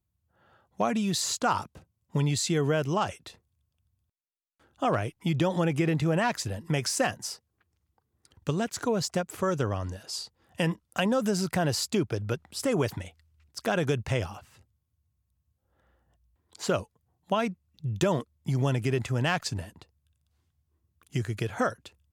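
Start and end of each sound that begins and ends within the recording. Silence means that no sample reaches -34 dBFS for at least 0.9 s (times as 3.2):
4.82–7.33
8.47–14.37
16.55–19.82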